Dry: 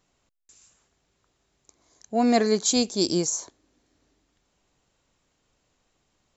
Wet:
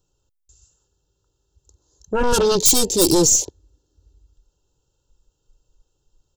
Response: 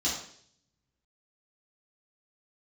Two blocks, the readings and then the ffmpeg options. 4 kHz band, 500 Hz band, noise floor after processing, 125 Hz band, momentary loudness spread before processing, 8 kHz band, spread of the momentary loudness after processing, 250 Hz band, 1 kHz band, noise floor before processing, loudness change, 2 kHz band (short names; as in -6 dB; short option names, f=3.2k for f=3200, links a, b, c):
+6.0 dB, +6.5 dB, -73 dBFS, +7.0 dB, 8 LU, n/a, 11 LU, +2.0 dB, +3.5 dB, -73 dBFS, +7.5 dB, +5.0 dB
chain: -af "aeval=exprs='0.398*sin(PI/2*5.01*val(0)/0.398)':c=same,aecho=1:1:2.2:0.71,aeval=exprs='0.708*(cos(1*acos(clip(val(0)/0.708,-1,1)))-cos(1*PI/2))+0.1*(cos(2*acos(clip(val(0)/0.708,-1,1)))-cos(2*PI/2))+0.00562*(cos(5*acos(clip(val(0)/0.708,-1,1)))-cos(5*PI/2))':c=same,asuperstop=centerf=2100:order=12:qfactor=2.4,equalizer=f=1.5k:w=0.3:g=-12.5,afwtdn=0.0282,volume=1dB"